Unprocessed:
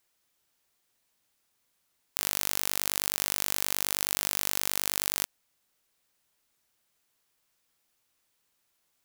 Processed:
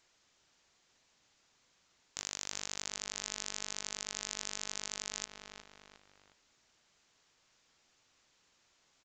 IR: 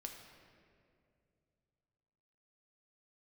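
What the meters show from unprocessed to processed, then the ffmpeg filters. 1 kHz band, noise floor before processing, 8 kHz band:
−9.5 dB, −75 dBFS, −8.0 dB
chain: -filter_complex "[0:a]asplit=2[link_01][link_02];[link_02]adelay=359,lowpass=frequency=3800:poles=1,volume=-22dB,asplit=2[link_03][link_04];[link_04]adelay=359,lowpass=frequency=3800:poles=1,volume=0.46,asplit=2[link_05][link_06];[link_06]adelay=359,lowpass=frequency=3800:poles=1,volume=0.46[link_07];[link_01][link_03][link_05][link_07]amix=inputs=4:normalize=0,alimiter=limit=-6.5dB:level=0:latency=1:release=106,aresample=16000,asoftclip=type=tanh:threshold=-29dB,aresample=44100,volume=7.5dB"

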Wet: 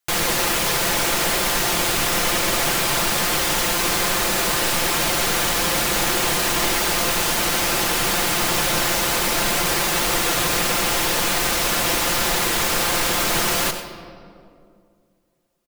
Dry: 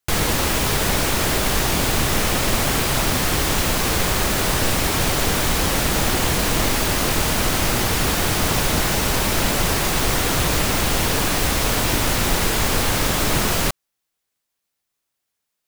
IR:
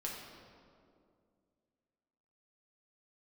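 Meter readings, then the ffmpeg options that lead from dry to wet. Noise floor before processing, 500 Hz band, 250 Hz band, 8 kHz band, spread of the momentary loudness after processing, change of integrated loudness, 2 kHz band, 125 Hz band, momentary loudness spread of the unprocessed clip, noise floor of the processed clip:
−79 dBFS, −1.0 dB, −4.0 dB, +1.5 dB, 0 LU, +0.5 dB, +1.5 dB, −8.5 dB, 0 LU, −61 dBFS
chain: -filter_complex "[0:a]lowshelf=frequency=260:gain=-12,aecho=1:1:5.8:0.51,asplit=2[link_01][link_02];[1:a]atrim=start_sample=2205,adelay=92[link_03];[link_02][link_03]afir=irnorm=-1:irlink=0,volume=-8dB[link_04];[link_01][link_04]amix=inputs=2:normalize=0"

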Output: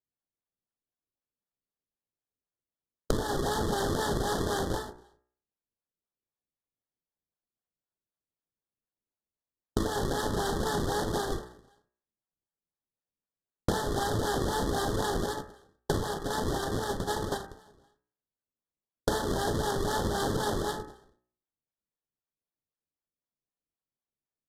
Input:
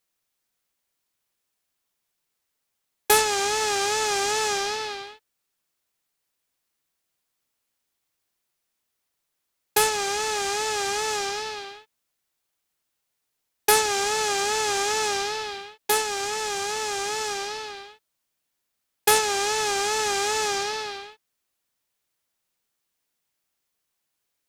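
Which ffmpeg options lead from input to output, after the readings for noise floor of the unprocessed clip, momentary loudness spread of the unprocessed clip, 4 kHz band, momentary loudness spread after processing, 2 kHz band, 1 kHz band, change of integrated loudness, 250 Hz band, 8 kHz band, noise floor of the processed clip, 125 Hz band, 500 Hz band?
−79 dBFS, 14 LU, −11.5 dB, 7 LU, −11.0 dB, −7.5 dB, −7.0 dB, +9.0 dB, −14.5 dB, below −85 dBFS, +14.5 dB, −4.5 dB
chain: -filter_complex "[0:a]acrusher=samples=33:mix=1:aa=0.000001:lfo=1:lforange=52.8:lforate=3.9,highshelf=frequency=10000:gain=6,adynamicsmooth=sensitivity=6:basefreq=6500,asplit=2[link_01][link_02];[link_02]adelay=36,volume=-9dB[link_03];[link_01][link_03]amix=inputs=2:normalize=0,agate=range=-26dB:threshold=-27dB:ratio=16:detection=peak,aresample=32000,aresample=44100,asuperstop=centerf=2400:order=12:qfactor=1.9,bandreject=frequency=60.92:width_type=h:width=4,bandreject=frequency=121.84:width_type=h:width=4,bandreject=frequency=182.76:width_type=h:width=4,bandreject=frequency=243.68:width_type=h:width=4,bandreject=frequency=304.6:width_type=h:width=4,bandreject=frequency=365.52:width_type=h:width=4,bandreject=frequency=426.44:width_type=h:width=4,bandreject=frequency=487.36:width_type=h:width=4,bandreject=frequency=548.28:width_type=h:width=4,bandreject=frequency=609.2:width_type=h:width=4,bandreject=frequency=670.12:width_type=h:width=4,bandreject=frequency=731.04:width_type=h:width=4,bandreject=frequency=791.96:width_type=h:width=4,bandreject=frequency=852.88:width_type=h:width=4,bandreject=frequency=913.8:width_type=h:width=4,bandreject=frequency=974.72:width_type=h:width=4,bandreject=frequency=1035.64:width_type=h:width=4,bandreject=frequency=1096.56:width_type=h:width=4,bandreject=frequency=1157.48:width_type=h:width=4,bandreject=frequency=1218.4:width_type=h:width=4,bandreject=frequency=1279.32:width_type=h:width=4,bandreject=frequency=1340.24:width_type=h:width=4,bandreject=frequency=1401.16:width_type=h:width=4,bandreject=frequency=1462.08:width_type=h:width=4,bandreject=frequency=1523:width_type=h:width=4,bandreject=frequency=1583.92:width_type=h:width=4,bandreject=frequency=1644.84:width_type=h:width=4,bandreject=frequency=1705.76:width_type=h:width=4,bandreject=frequency=1766.68:width_type=h:width=4,bandreject=frequency=1827.6:width_type=h:width=4,bandreject=frequency=1888.52:width_type=h:width=4,bandreject=frequency=1949.44:width_type=h:width=4,bandreject=frequency=2010.36:width_type=h:width=4,bandreject=frequency=2071.28:width_type=h:width=4,acompressor=threshold=-30dB:ratio=6,equalizer=frequency=1300:width_type=o:width=0.42:gain=-2.5,volume=4dB"

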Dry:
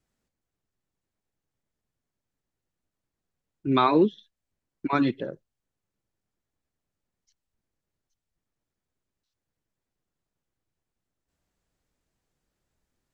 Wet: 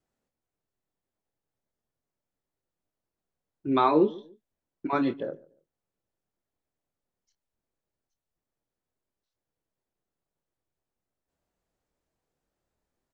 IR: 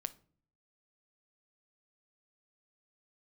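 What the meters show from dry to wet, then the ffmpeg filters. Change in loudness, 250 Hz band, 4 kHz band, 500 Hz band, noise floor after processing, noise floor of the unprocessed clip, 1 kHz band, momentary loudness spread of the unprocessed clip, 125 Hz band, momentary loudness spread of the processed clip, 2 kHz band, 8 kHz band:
−2.0 dB, −2.5 dB, −6.0 dB, 0.0 dB, below −85 dBFS, below −85 dBFS, −1.0 dB, 16 LU, −6.5 dB, 18 LU, −4.5 dB, can't be measured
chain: -filter_complex "[0:a]equalizer=frequency=610:width_type=o:width=2.2:gain=7.5,asplit=2[link_01][link_02];[link_02]adelay=26,volume=-9dB[link_03];[link_01][link_03]amix=inputs=2:normalize=0,asplit=2[link_04][link_05];[link_05]adelay=144,lowpass=frequency=1000:poles=1,volume=-20.5dB,asplit=2[link_06][link_07];[link_07]adelay=144,lowpass=frequency=1000:poles=1,volume=0.29[link_08];[link_06][link_08]amix=inputs=2:normalize=0[link_09];[link_04][link_09]amix=inputs=2:normalize=0,volume=-7dB"

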